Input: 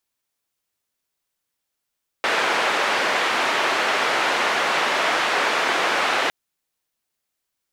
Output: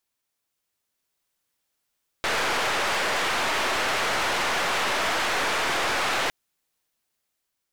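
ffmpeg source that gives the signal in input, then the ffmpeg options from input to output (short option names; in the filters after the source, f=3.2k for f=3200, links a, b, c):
-f lavfi -i "anoisesrc=c=white:d=4.06:r=44100:seed=1,highpass=f=430,lowpass=f=2000,volume=-5.2dB"
-af "dynaudnorm=f=400:g=5:m=3.5dB,aeval=exprs='(tanh(14.1*val(0)+0.35)-tanh(0.35))/14.1':c=same"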